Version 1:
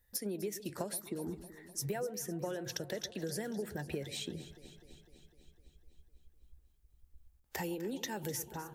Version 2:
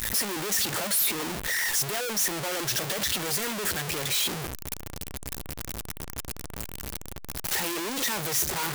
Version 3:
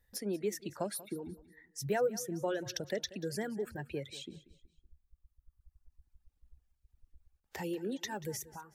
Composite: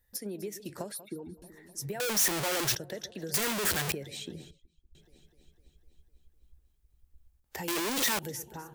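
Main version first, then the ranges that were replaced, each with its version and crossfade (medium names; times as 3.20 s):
1
0.92–1.42 s: from 3
2.00–2.75 s: from 2
3.34–3.92 s: from 2
4.51–4.95 s: from 3
7.68–8.19 s: from 2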